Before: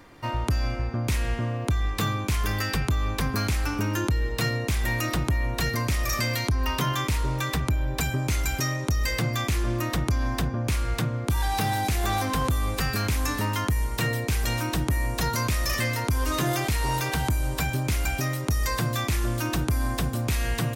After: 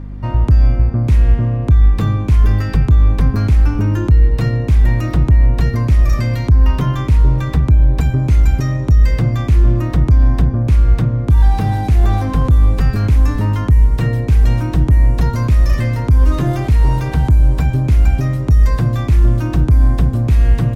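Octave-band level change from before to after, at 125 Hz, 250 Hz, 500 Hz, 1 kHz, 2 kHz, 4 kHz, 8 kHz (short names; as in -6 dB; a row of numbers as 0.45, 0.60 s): +14.5 dB, +9.5 dB, +6.0 dB, +2.5 dB, -1.0 dB, -5.0 dB, n/a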